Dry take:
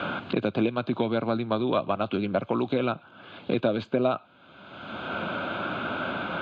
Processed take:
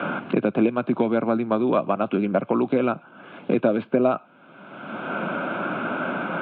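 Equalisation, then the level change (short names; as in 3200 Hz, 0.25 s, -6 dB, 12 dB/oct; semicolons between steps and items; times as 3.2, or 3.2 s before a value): HPF 150 Hz 24 dB/oct; LPF 2600 Hz 24 dB/oct; low shelf 430 Hz +3.5 dB; +3.0 dB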